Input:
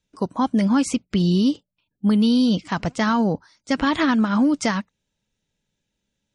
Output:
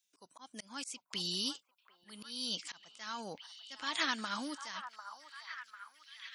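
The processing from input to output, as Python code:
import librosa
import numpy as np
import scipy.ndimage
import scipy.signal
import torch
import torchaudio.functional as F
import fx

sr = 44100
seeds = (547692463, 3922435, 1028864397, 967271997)

y = np.diff(x, prepend=0.0)
y = fx.auto_swell(y, sr, attack_ms=367.0)
y = fx.echo_stepped(y, sr, ms=747, hz=1000.0, octaves=0.7, feedback_pct=70, wet_db=-6.5)
y = y * librosa.db_to_amplitude(3.5)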